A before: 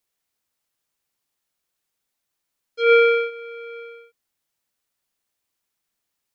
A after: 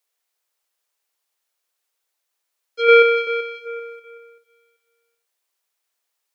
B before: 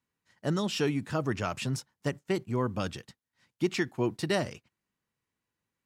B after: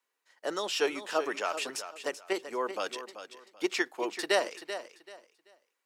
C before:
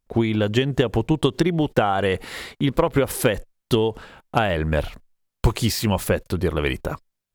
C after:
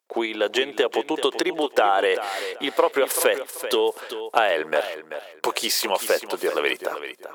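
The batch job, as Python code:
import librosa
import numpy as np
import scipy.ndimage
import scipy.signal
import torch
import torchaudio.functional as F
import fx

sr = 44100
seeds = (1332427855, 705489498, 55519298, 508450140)

p1 = scipy.signal.sosfilt(scipy.signal.butter(4, 410.0, 'highpass', fs=sr, output='sos'), x)
p2 = fx.level_steps(p1, sr, step_db=15)
p3 = p1 + (p2 * librosa.db_to_amplitude(-2.0))
y = fx.echo_feedback(p3, sr, ms=385, feedback_pct=25, wet_db=-11.0)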